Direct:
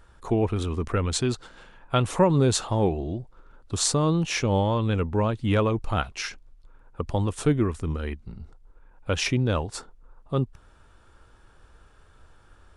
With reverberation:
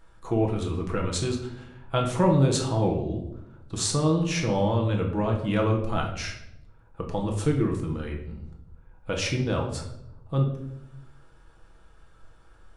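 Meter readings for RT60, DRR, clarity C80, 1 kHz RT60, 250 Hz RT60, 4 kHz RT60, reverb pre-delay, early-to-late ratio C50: 0.80 s, 0.5 dB, 10.5 dB, 0.70 s, 1.2 s, 0.55 s, 6 ms, 7.0 dB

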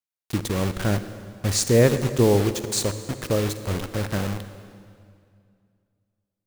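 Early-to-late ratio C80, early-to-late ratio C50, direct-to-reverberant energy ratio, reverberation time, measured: 11.5 dB, 11.0 dB, 10.5 dB, 2.3 s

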